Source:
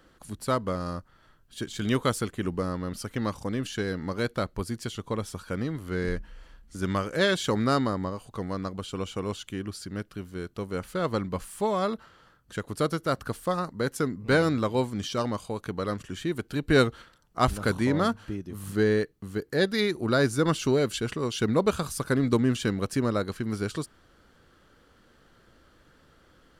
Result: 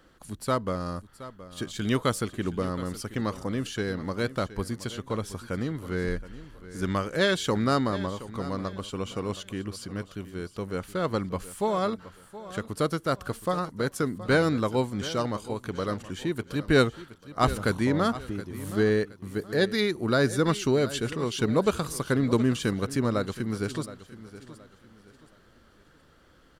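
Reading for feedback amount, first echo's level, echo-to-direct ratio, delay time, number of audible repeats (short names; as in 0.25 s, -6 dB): 33%, -15.5 dB, -15.0 dB, 0.721 s, 3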